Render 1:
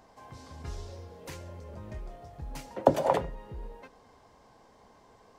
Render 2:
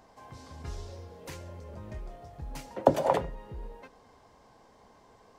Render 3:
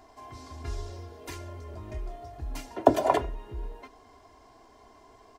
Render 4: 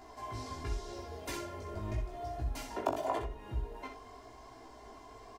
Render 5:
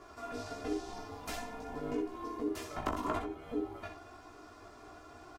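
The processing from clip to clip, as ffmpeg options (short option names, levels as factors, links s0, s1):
-af anull
-af "aecho=1:1:2.9:0.79,volume=1.12"
-filter_complex "[0:a]acompressor=threshold=0.0141:ratio=3,flanger=delay=15.5:depth=4.5:speed=0.87,asplit=2[s0][s1];[s1]aecho=0:1:18|63:0.316|0.422[s2];[s0][s2]amix=inputs=2:normalize=0,volume=1.78"
-filter_complex "[0:a]aeval=exprs='val(0)*sin(2*PI*360*n/s)':c=same,volume=20,asoftclip=hard,volume=0.0501,asplit=2[s0][s1];[s1]adelay=13,volume=0.266[s2];[s0][s2]amix=inputs=2:normalize=0,volume=1.26"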